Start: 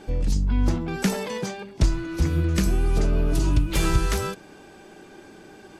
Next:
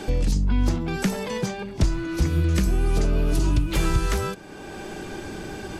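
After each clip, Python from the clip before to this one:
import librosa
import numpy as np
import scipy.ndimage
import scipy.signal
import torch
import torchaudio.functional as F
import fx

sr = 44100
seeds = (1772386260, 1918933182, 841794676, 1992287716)

y = fx.band_squash(x, sr, depth_pct=70)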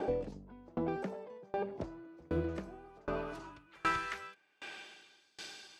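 y = fx.filter_sweep_bandpass(x, sr, from_hz=570.0, to_hz=4300.0, start_s=2.38, end_s=5.37, q=1.5)
y = fx.tremolo_decay(y, sr, direction='decaying', hz=1.3, depth_db=31)
y = F.gain(torch.from_numpy(y), 5.0).numpy()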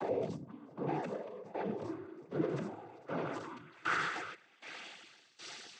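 y = fx.spec_quant(x, sr, step_db=15)
y = fx.transient(y, sr, attack_db=-6, sustain_db=8)
y = fx.noise_vocoder(y, sr, seeds[0], bands=16)
y = F.gain(torch.from_numpy(y), 1.0).numpy()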